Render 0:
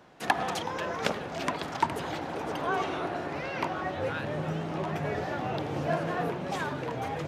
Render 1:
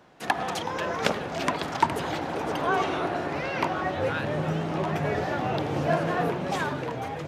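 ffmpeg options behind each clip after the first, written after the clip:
-af "dynaudnorm=f=110:g=11:m=4.5dB"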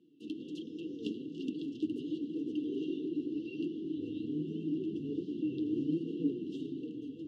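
-filter_complex "[0:a]afftfilt=real='re*(1-between(b*sr/4096,510,2700))':imag='im*(1-between(b*sr/4096,510,2700))':win_size=4096:overlap=0.75,asplit=3[a][b][c];[a]bandpass=f=300:t=q:w=8,volume=0dB[d];[b]bandpass=f=870:t=q:w=8,volume=-6dB[e];[c]bandpass=f=2.24k:t=q:w=8,volume=-9dB[f];[d][e][f]amix=inputs=3:normalize=0,flanger=delay=4.2:depth=5.6:regen=42:speed=1.3:shape=triangular,volume=8.5dB"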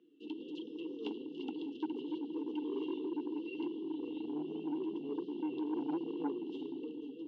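-af "asoftclip=type=tanh:threshold=-27.5dB,highpass=500,lowpass=2.2k,volume=7.5dB"

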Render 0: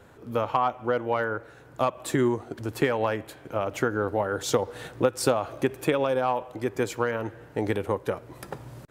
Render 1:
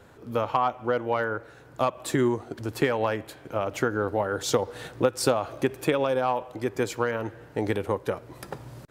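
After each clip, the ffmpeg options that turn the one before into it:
-af "equalizer=f=4.7k:t=o:w=0.77:g=2.5"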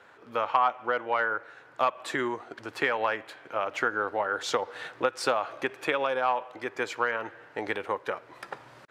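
-af "bandpass=f=1.7k:t=q:w=0.82:csg=0,volume=4dB"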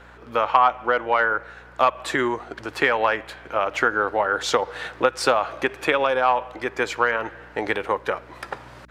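-af "aeval=exprs='val(0)+0.00141*(sin(2*PI*60*n/s)+sin(2*PI*2*60*n/s)/2+sin(2*PI*3*60*n/s)/3+sin(2*PI*4*60*n/s)/4+sin(2*PI*5*60*n/s)/5)':c=same,volume=7dB"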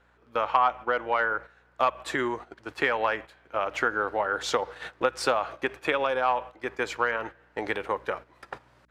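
-af "agate=range=-11dB:threshold=-32dB:ratio=16:detection=peak,volume=-5.5dB"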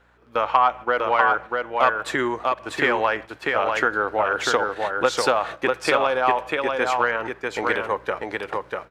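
-af "aecho=1:1:644:0.668,volume=4.5dB"

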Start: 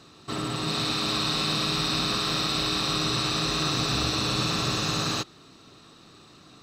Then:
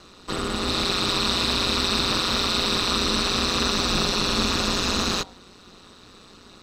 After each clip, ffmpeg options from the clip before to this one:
-af "bandreject=f=47.91:t=h:w=4,bandreject=f=95.82:t=h:w=4,bandreject=f=143.73:t=h:w=4,bandreject=f=191.64:t=h:w=4,bandreject=f=239.55:t=h:w=4,bandreject=f=287.46:t=h:w=4,bandreject=f=335.37:t=h:w=4,bandreject=f=383.28:t=h:w=4,bandreject=f=431.19:t=h:w=4,bandreject=f=479.1:t=h:w=4,bandreject=f=527.01:t=h:w=4,bandreject=f=574.92:t=h:w=4,bandreject=f=622.83:t=h:w=4,bandreject=f=670.74:t=h:w=4,bandreject=f=718.65:t=h:w=4,bandreject=f=766.56:t=h:w=4,bandreject=f=814.47:t=h:w=4,bandreject=f=862.38:t=h:w=4,bandreject=f=910.29:t=h:w=4,bandreject=f=958.2:t=h:w=4,aeval=exprs='val(0)*sin(2*PI*92*n/s)':c=same,volume=6.5dB"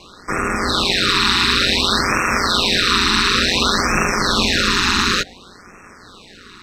-af "equalizer=f=1.8k:w=1.2:g=10.5,afftfilt=real='re*(1-between(b*sr/1024,550*pow(3900/550,0.5+0.5*sin(2*PI*0.56*pts/sr))/1.41,550*pow(3900/550,0.5+0.5*sin(2*PI*0.56*pts/sr))*1.41))':imag='im*(1-between(b*sr/1024,550*pow(3900/550,0.5+0.5*sin(2*PI*0.56*pts/sr))/1.41,550*pow(3900/550,0.5+0.5*sin(2*PI*0.56*pts/sr))*1.41))':win_size=1024:overlap=0.75,volume=4.5dB"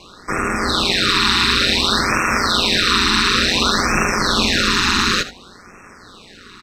-af "aecho=1:1:78:0.188"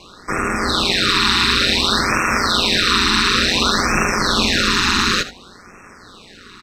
-af anull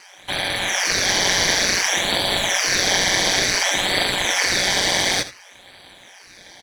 -af "aeval=exprs='val(0)*sin(2*PI*2000*n/s)':c=same,aexciter=amount=1.6:drive=3.8:freq=4k,volume=-1dB"

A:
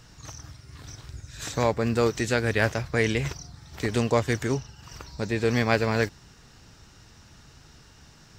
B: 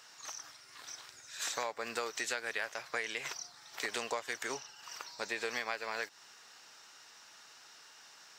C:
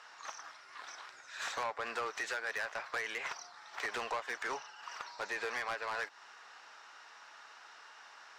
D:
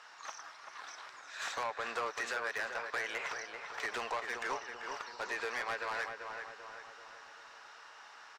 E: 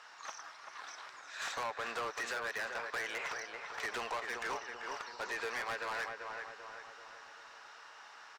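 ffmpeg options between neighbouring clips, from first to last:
-af "highpass=780,acompressor=threshold=-32dB:ratio=16"
-af "bandpass=f=1.1k:t=q:w=0.92:csg=0,asoftclip=type=tanh:threshold=-38dB,volume=7.5dB"
-filter_complex "[0:a]asplit=2[a][b];[b]adelay=389,lowpass=f=2.4k:p=1,volume=-5.5dB,asplit=2[c][d];[d]adelay=389,lowpass=f=2.4k:p=1,volume=0.54,asplit=2[e][f];[f]adelay=389,lowpass=f=2.4k:p=1,volume=0.54,asplit=2[g][h];[h]adelay=389,lowpass=f=2.4k:p=1,volume=0.54,asplit=2[i][j];[j]adelay=389,lowpass=f=2.4k:p=1,volume=0.54,asplit=2[k][l];[l]adelay=389,lowpass=f=2.4k:p=1,volume=0.54,asplit=2[m][n];[n]adelay=389,lowpass=f=2.4k:p=1,volume=0.54[o];[a][c][e][g][i][k][m][o]amix=inputs=8:normalize=0"
-af "volume=33.5dB,asoftclip=hard,volume=-33.5dB"

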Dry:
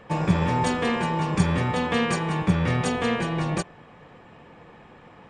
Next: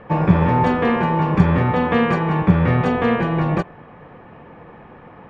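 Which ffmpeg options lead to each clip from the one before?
-af "lowpass=1.9k,volume=7dB"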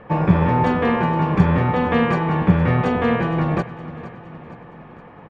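-af "aecho=1:1:465|930|1395|1860|2325:0.168|0.0873|0.0454|0.0236|0.0123,volume=-1dB"

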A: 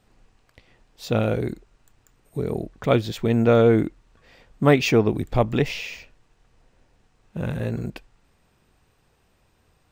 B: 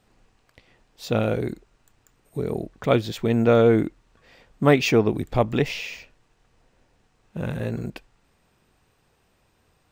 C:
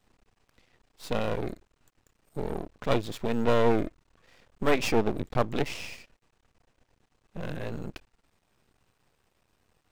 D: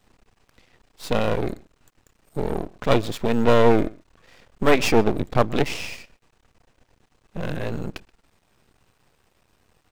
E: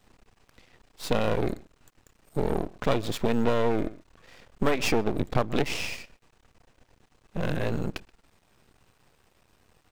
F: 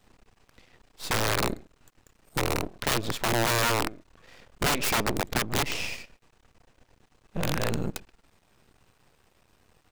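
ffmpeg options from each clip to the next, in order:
-af "lowshelf=f=94:g=-5"
-af "aeval=exprs='max(val(0),0)':c=same,volume=-2dB"
-filter_complex "[0:a]asplit=2[a][b];[b]adelay=128.3,volume=-24dB,highshelf=f=4k:g=-2.89[c];[a][c]amix=inputs=2:normalize=0,volume=7dB"
-af "acompressor=threshold=-18dB:ratio=12"
-af "aeval=exprs='(mod(7.08*val(0)+1,2)-1)/7.08':c=same"

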